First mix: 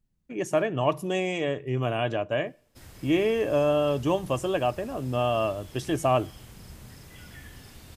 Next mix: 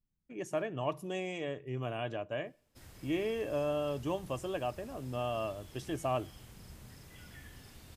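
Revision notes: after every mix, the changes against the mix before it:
speech −10.0 dB
background −6.0 dB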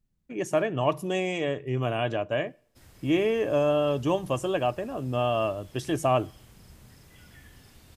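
speech +9.5 dB

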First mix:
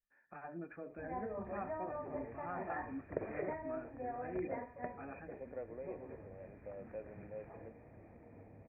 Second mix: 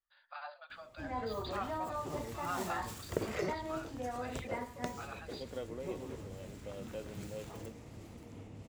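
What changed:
first voice: add linear-phase brick-wall band-pass 520–4,900 Hz
background: remove high-frequency loss of the air 110 metres
master: remove Chebyshev low-pass with heavy ripple 2,500 Hz, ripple 9 dB

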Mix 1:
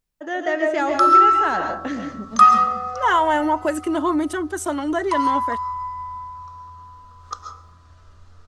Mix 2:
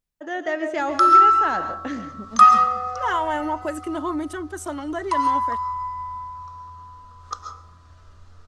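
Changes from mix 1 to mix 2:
first voice: send −8.0 dB
second voice −6.0 dB

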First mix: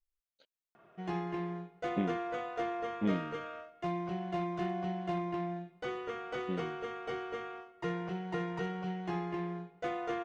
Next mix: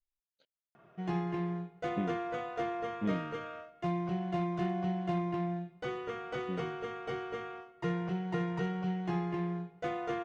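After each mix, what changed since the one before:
speech −5.0 dB
master: add parametric band 130 Hz +7.5 dB 1.2 octaves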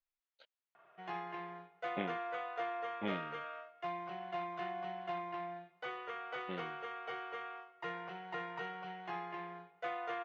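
speech +12.0 dB
master: add three-way crossover with the lows and the highs turned down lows −22 dB, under 560 Hz, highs −17 dB, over 4,100 Hz

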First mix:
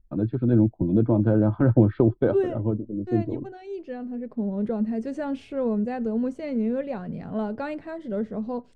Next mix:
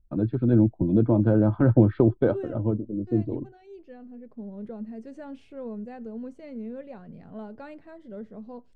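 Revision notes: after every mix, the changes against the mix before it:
second voice −11.0 dB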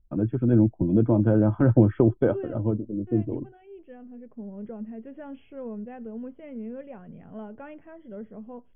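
master: add linear-phase brick-wall low-pass 3,400 Hz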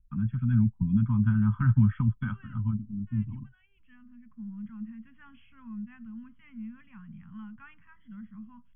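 master: add elliptic band-stop filter 210–1,100 Hz, stop band 40 dB

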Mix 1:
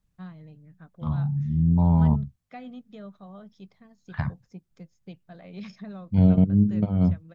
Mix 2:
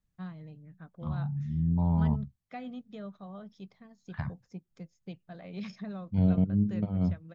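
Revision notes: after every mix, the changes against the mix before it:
second voice −7.0 dB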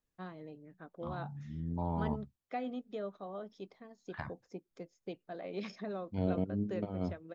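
first voice: add parametric band 380 Hz +5.5 dB 2.4 octaves
master: add low shelf with overshoot 240 Hz −9.5 dB, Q 1.5

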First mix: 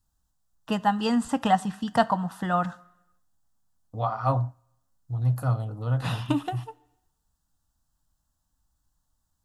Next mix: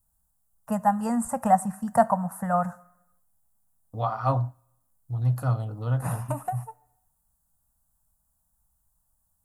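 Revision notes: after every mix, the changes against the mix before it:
first voice: add drawn EQ curve 230 Hz 0 dB, 330 Hz −24 dB, 560 Hz +5 dB, 2,300 Hz −8 dB, 3,300 Hz −29 dB, 9,500 Hz +11 dB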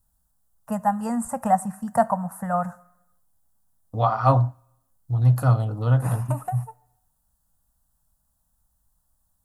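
second voice +6.5 dB

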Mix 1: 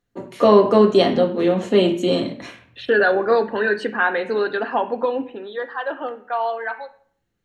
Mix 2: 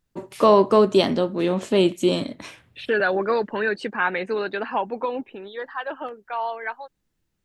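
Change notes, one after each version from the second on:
first voice +9.0 dB
reverb: off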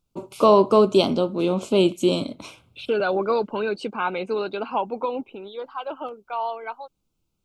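master: add Butterworth band-reject 1,800 Hz, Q 2.1

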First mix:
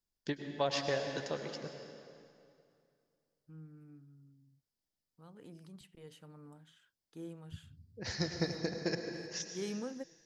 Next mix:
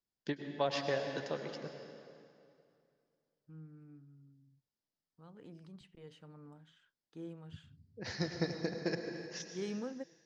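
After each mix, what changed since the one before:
first voice: add high-pass filter 110 Hz
master: add high-frequency loss of the air 93 metres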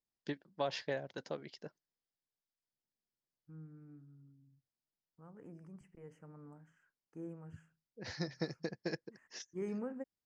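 second voice: add Butterworth band-reject 3,800 Hz, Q 0.84
reverb: off

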